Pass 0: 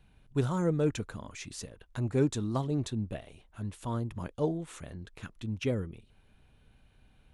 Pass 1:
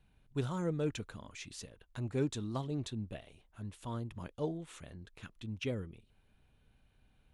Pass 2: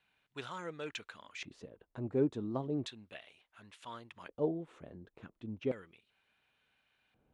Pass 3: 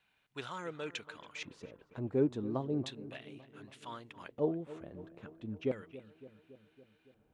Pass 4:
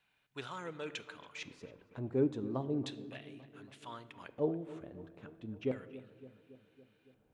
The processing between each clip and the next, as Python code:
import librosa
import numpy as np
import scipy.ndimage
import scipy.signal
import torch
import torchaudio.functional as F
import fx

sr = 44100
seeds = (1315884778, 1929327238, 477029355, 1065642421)

y1 = fx.dynamic_eq(x, sr, hz=3200.0, q=1.1, threshold_db=-58.0, ratio=4.0, max_db=5)
y1 = y1 * librosa.db_to_amplitude(-6.5)
y2 = fx.filter_lfo_bandpass(y1, sr, shape='square', hz=0.35, low_hz=420.0, high_hz=2200.0, q=0.8)
y2 = y2 * librosa.db_to_amplitude(4.5)
y3 = fx.echo_filtered(y2, sr, ms=280, feedback_pct=66, hz=2300.0, wet_db=-16)
y3 = y3 * librosa.db_to_amplitude(1.0)
y4 = fx.room_shoebox(y3, sr, seeds[0], volume_m3=890.0, walls='mixed', distance_m=0.32)
y4 = y4 * librosa.db_to_amplitude(-1.5)